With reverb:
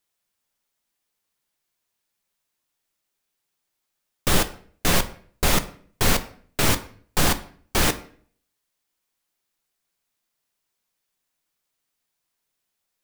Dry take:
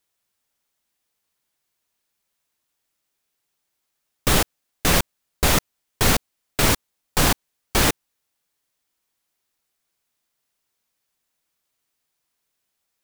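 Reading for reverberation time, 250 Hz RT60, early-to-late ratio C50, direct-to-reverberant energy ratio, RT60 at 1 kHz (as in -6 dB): 0.50 s, 0.65 s, 15.5 dB, 9.5 dB, 0.45 s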